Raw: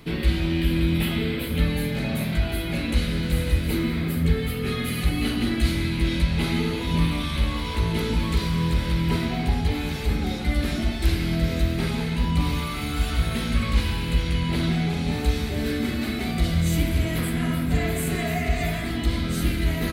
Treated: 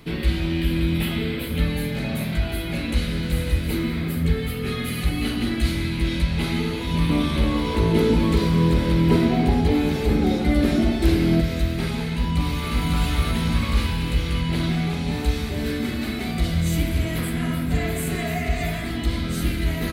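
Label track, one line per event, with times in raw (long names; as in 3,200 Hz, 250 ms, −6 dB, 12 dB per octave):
7.090000	11.410000	parametric band 360 Hz +10.5 dB 2.3 octaves
12.080000	12.760000	delay throw 550 ms, feedback 65%, level −0.5 dB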